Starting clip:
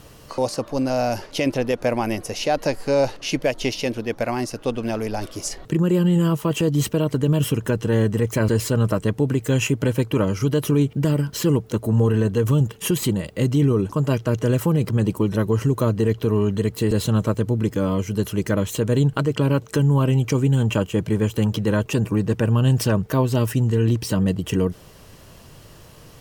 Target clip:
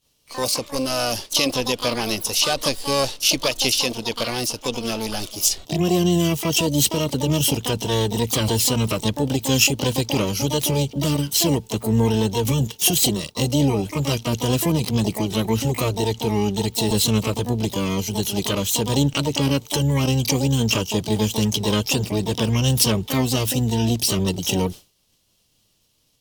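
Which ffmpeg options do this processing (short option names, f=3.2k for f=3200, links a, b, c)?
-filter_complex "[0:a]asplit=3[a][b][c];[b]asetrate=22050,aresample=44100,atempo=2,volume=-17dB[d];[c]asetrate=88200,aresample=44100,atempo=0.5,volume=-5dB[e];[a][d][e]amix=inputs=3:normalize=0,highshelf=f=2.4k:t=q:w=1.5:g=11.5,agate=range=-33dB:threshold=-24dB:ratio=3:detection=peak,volume=-3dB"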